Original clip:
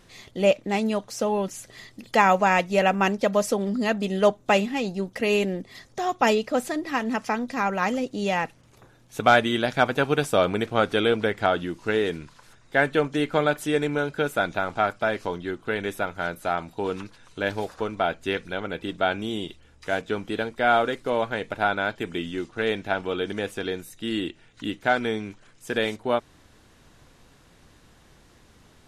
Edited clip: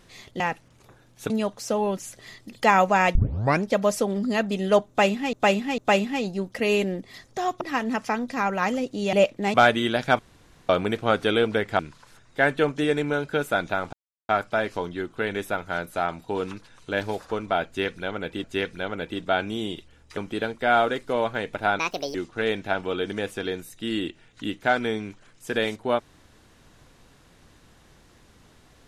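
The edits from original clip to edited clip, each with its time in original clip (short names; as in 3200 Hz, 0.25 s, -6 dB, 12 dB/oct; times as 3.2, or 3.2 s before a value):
0.4–0.81 swap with 8.33–9.23
2.66 tape start 0.48 s
4.39–4.84 loop, 3 plays
6.22–6.81 cut
9.88–10.38 room tone
11.48–12.15 cut
13.2–13.69 cut
14.78 insert silence 0.36 s
18.16–18.93 loop, 2 plays
19.89–20.14 cut
21.76–22.35 speed 165%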